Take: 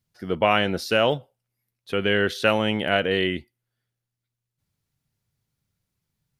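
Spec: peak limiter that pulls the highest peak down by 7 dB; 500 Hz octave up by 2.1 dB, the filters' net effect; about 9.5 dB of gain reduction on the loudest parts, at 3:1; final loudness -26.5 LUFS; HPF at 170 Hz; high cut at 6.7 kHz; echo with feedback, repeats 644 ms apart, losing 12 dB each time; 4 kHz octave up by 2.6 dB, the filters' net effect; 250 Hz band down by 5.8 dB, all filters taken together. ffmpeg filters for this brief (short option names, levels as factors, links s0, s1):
-af "highpass=170,lowpass=6700,equalizer=f=250:t=o:g=-8.5,equalizer=f=500:t=o:g=4.5,equalizer=f=4000:t=o:g=4.5,acompressor=threshold=0.0501:ratio=3,alimiter=limit=0.141:level=0:latency=1,aecho=1:1:644|1288|1932:0.251|0.0628|0.0157,volume=1.68"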